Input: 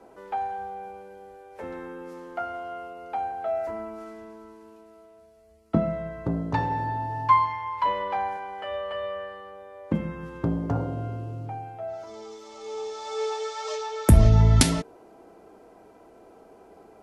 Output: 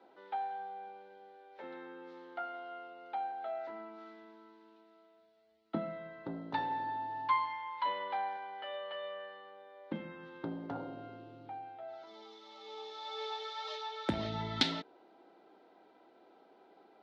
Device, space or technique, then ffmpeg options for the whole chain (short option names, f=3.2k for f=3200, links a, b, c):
phone earpiece: -af "highpass=390,equalizer=f=450:t=q:w=4:g=-9,equalizer=f=650:t=q:w=4:g=-7,equalizer=f=1.1k:t=q:w=4:g=-9,equalizer=f=1.7k:t=q:w=4:g=-3,equalizer=f=2.5k:t=q:w=4:g=-5,equalizer=f=3.8k:t=q:w=4:g=7,lowpass=f=4k:w=0.5412,lowpass=f=4k:w=1.3066,volume=-3.5dB"